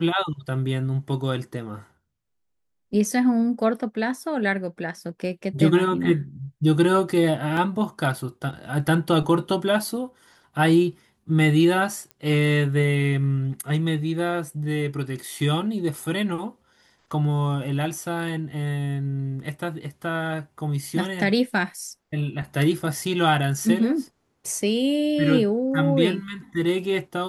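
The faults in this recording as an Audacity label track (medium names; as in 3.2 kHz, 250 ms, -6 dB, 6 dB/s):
7.570000	7.570000	dropout 2.1 ms
12.110000	12.110000	pop -24 dBFS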